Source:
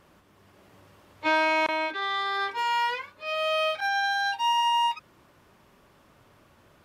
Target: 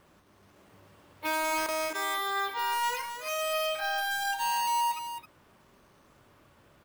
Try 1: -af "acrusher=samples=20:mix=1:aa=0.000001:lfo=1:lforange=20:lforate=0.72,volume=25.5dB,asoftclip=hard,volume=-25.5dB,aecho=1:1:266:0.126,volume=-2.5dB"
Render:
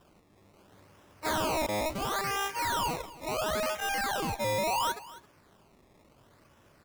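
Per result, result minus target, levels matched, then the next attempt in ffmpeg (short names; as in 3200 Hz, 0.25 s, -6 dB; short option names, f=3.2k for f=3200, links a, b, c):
decimation with a swept rate: distortion +21 dB; echo-to-direct -9.5 dB
-af "acrusher=samples=4:mix=1:aa=0.000001:lfo=1:lforange=4:lforate=0.72,volume=25.5dB,asoftclip=hard,volume=-25.5dB,aecho=1:1:266:0.126,volume=-2.5dB"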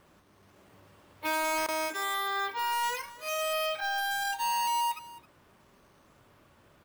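echo-to-direct -9.5 dB
-af "acrusher=samples=4:mix=1:aa=0.000001:lfo=1:lforange=4:lforate=0.72,volume=25.5dB,asoftclip=hard,volume=-25.5dB,aecho=1:1:266:0.376,volume=-2.5dB"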